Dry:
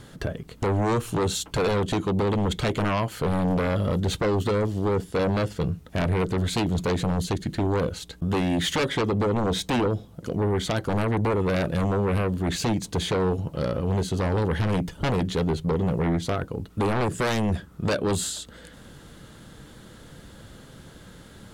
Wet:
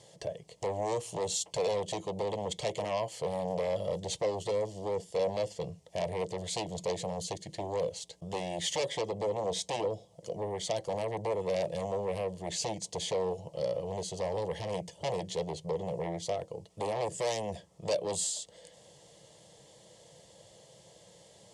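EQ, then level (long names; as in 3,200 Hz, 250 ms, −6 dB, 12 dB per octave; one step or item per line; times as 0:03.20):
loudspeaker in its box 250–8,800 Hz, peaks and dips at 270 Hz −5 dB, 390 Hz −9 dB, 810 Hz −4 dB, 1,200 Hz −9 dB, 2,500 Hz −6 dB, 3,800 Hz −7 dB
phaser with its sweep stopped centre 610 Hz, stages 4
0.0 dB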